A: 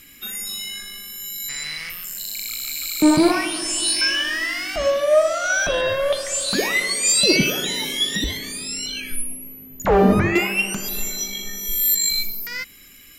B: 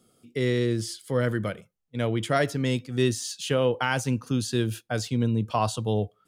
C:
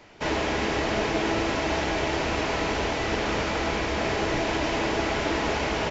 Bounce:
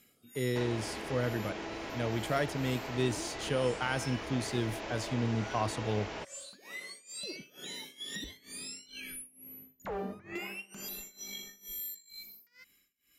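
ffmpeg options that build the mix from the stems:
-filter_complex "[0:a]highpass=40,tremolo=f=2.2:d=0.93,volume=0.376,afade=t=in:st=7.56:d=0.45:silence=0.334965,afade=t=out:st=11.63:d=0.42:silence=0.266073[s0];[1:a]volume=0.422[s1];[2:a]adelay=350,volume=0.473[s2];[s0][s2]amix=inputs=2:normalize=0,equalizer=f=72:t=o:w=2.3:g=-4,acompressor=threshold=0.00891:ratio=2.5,volume=1[s3];[s1][s3]amix=inputs=2:normalize=0"

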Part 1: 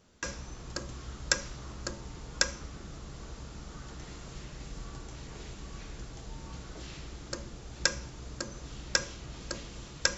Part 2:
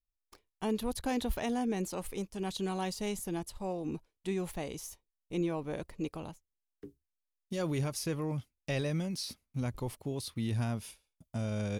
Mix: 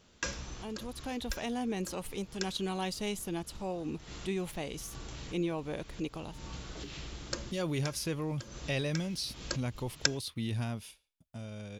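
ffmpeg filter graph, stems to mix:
-filter_complex "[0:a]volume=1[s0];[1:a]dynaudnorm=f=240:g=11:m=3.16,volume=0.299,asplit=2[s1][s2];[s2]apad=whole_len=448761[s3];[s0][s3]sidechaincompress=threshold=0.00447:ratio=8:attack=6.9:release=180[s4];[s4][s1]amix=inputs=2:normalize=0,equalizer=f=3200:w=1.2:g=5.5"

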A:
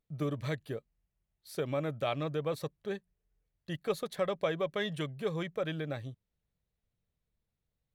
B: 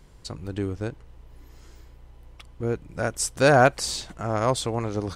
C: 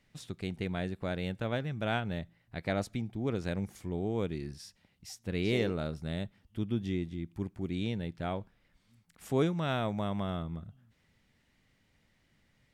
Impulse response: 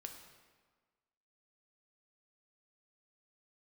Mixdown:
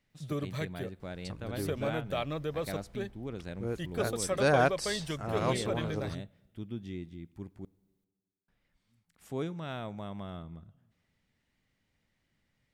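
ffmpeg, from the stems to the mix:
-filter_complex "[0:a]highshelf=f=6600:g=7,adelay=100,volume=0.841,asplit=2[s0][s1];[s1]volume=0.119[s2];[1:a]bandreject=f=6900:w=12,adelay=1000,volume=0.376[s3];[2:a]volume=0.398,asplit=3[s4][s5][s6];[s4]atrim=end=7.65,asetpts=PTS-STARTPTS,afade=t=out:st=7.646:d=0.004:c=hsin[s7];[s5]atrim=start=7.65:end=8.48,asetpts=PTS-STARTPTS,volume=0[s8];[s6]atrim=start=8.48,asetpts=PTS-STARTPTS,afade=t=in:d=0.004:c=hsin[s9];[s7][s8][s9]concat=n=3:v=0:a=1,asplit=2[s10][s11];[s11]volume=0.237[s12];[3:a]atrim=start_sample=2205[s13];[s2][s12]amix=inputs=2:normalize=0[s14];[s14][s13]afir=irnorm=-1:irlink=0[s15];[s0][s3][s10][s15]amix=inputs=4:normalize=0"

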